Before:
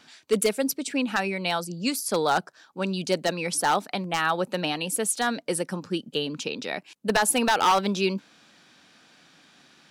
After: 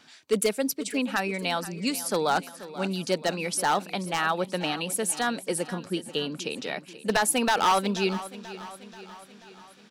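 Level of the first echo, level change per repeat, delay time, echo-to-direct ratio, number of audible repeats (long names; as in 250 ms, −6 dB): −15.5 dB, −5.0 dB, 484 ms, −14.0 dB, 4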